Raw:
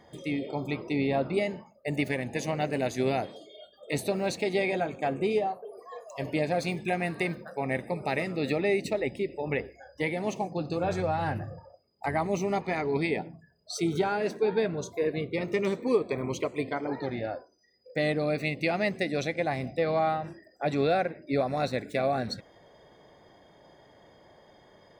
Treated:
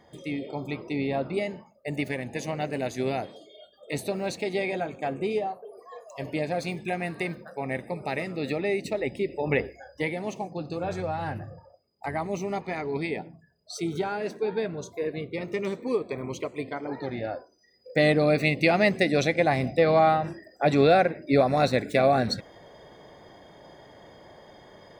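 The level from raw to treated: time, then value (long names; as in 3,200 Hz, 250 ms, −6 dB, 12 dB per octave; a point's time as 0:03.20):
0:08.83 −1 dB
0:09.64 +6 dB
0:10.27 −2 dB
0:16.79 −2 dB
0:18.00 +6.5 dB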